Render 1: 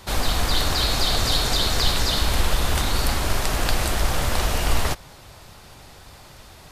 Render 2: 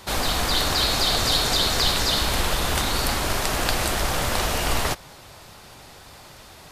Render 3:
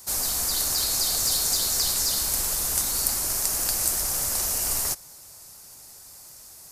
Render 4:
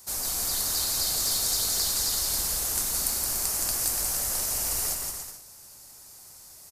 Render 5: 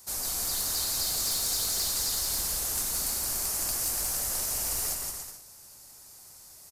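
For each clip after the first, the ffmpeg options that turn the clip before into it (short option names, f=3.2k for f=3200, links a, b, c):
-af "lowshelf=f=100:g=-8.5,volume=1.5dB"
-af "aexciter=amount=7.3:drive=6.5:freq=5k,volume=-12.5dB"
-af "aecho=1:1:170|289|372.3|430.6|471.4:0.631|0.398|0.251|0.158|0.1,volume=-4.5dB"
-af "asoftclip=type=hard:threshold=-21.5dB,volume=-2dB"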